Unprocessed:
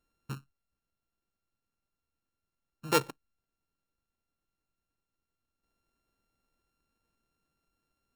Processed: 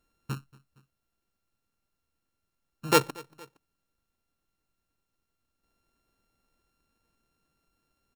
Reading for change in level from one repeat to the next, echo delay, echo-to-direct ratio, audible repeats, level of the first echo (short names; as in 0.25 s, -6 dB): -4.5 dB, 0.232 s, -22.0 dB, 2, -23.5 dB